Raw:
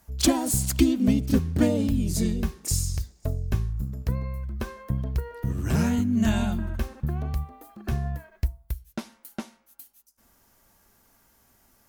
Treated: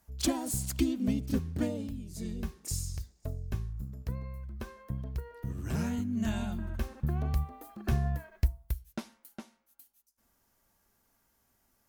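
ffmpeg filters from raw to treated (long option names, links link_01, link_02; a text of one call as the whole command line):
ffmpeg -i in.wav -af "volume=10dB,afade=type=out:start_time=1.49:duration=0.61:silence=0.281838,afade=type=in:start_time=2.1:duration=0.31:silence=0.298538,afade=type=in:start_time=6.48:duration=0.9:silence=0.398107,afade=type=out:start_time=8.57:duration=0.79:silence=0.334965" out.wav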